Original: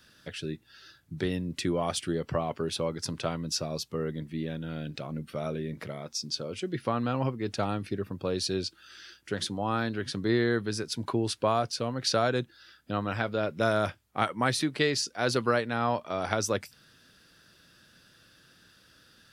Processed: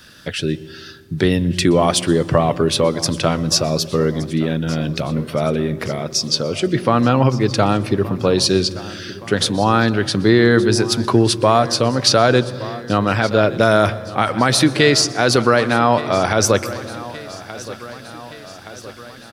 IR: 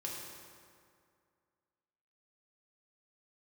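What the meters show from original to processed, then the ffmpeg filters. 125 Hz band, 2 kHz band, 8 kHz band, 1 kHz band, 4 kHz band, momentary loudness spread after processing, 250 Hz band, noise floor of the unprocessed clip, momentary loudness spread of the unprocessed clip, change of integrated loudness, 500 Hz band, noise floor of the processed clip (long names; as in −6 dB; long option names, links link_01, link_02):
+14.5 dB, +13.0 dB, +14.5 dB, +13.0 dB, +14.5 dB, 17 LU, +14.5 dB, −61 dBFS, 10 LU, +14.0 dB, +14.0 dB, −37 dBFS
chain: -filter_complex "[0:a]aecho=1:1:1170|2340|3510|4680|5850:0.119|0.0701|0.0414|0.0244|0.0144,asplit=2[link_01][link_02];[1:a]atrim=start_sample=2205,lowshelf=frequency=250:gain=12,adelay=122[link_03];[link_02][link_03]afir=irnorm=-1:irlink=0,volume=-20dB[link_04];[link_01][link_04]amix=inputs=2:normalize=0,alimiter=level_in=15.5dB:limit=-1dB:release=50:level=0:latency=1,volume=-1dB"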